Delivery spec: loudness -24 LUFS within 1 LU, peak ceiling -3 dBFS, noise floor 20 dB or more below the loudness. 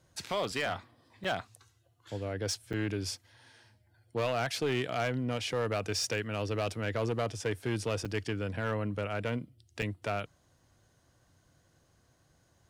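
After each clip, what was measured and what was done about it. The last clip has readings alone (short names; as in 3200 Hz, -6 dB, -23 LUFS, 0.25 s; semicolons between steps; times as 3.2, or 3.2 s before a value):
clipped 1.2%; flat tops at -25.0 dBFS; dropouts 4; longest dropout 6.0 ms; loudness -34.0 LUFS; peak -25.0 dBFS; loudness target -24.0 LUFS
-> clip repair -25 dBFS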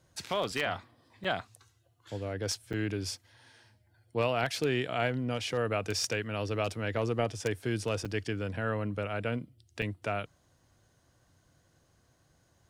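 clipped 0.0%; dropouts 4; longest dropout 6.0 ms
-> interpolate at 1.24/2.73/8.05/9.82, 6 ms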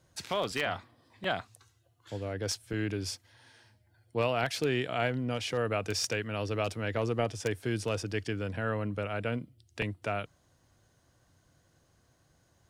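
dropouts 0; loudness -33.0 LUFS; peak -16.0 dBFS; loudness target -24.0 LUFS
-> gain +9 dB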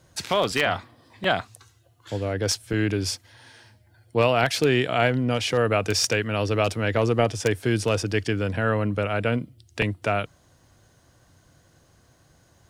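loudness -24.0 LUFS; peak -7.0 dBFS; noise floor -60 dBFS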